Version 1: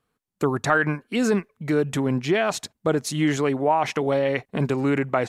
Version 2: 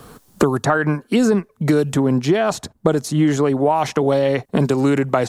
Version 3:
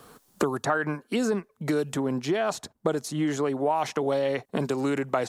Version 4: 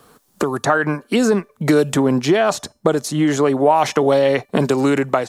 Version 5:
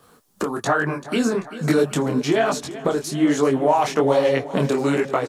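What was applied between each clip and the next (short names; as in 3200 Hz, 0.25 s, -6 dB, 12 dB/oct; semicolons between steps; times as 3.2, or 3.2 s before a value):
bell 2300 Hz -9 dB 1.1 oct; three-band squash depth 100%; gain +5 dB
low shelf 190 Hz -10.5 dB; gain -7 dB
AGC gain up to 11.5 dB; resonator 590 Hz, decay 0.31 s, mix 40%; gain +5 dB
feedback echo 0.388 s, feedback 58%, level -15.5 dB; detuned doubles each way 41 cents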